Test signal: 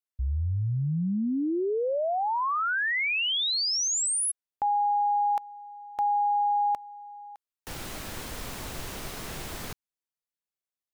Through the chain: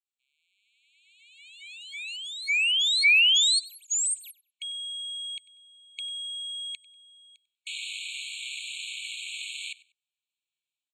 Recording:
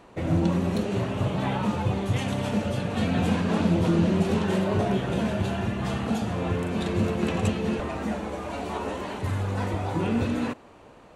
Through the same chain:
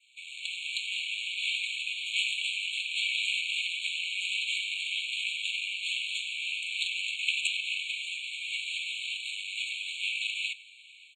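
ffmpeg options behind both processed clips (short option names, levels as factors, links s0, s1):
-filter_complex "[0:a]highpass=45,adynamicequalizer=threshold=0.00447:dfrequency=3800:dqfactor=1.5:tfrequency=3800:tqfactor=1.5:attack=5:release=100:ratio=0.375:range=2:mode=cutabove:tftype=bell,acrossover=split=270|4400[s0][s1][s2];[s1]dynaudnorm=f=270:g=3:m=3.55[s3];[s0][s3][s2]amix=inputs=3:normalize=0,aeval=exprs='max(val(0),0)':c=same,asplit=2[s4][s5];[s5]aecho=0:1:96|192:0.0944|0.0217[s6];[s4][s6]amix=inputs=2:normalize=0,aresample=22050,aresample=44100,afftfilt=real='re*eq(mod(floor(b*sr/1024/2200),2),1)':imag='im*eq(mod(floor(b*sr/1024/2200),2),1)':win_size=1024:overlap=0.75,volume=2"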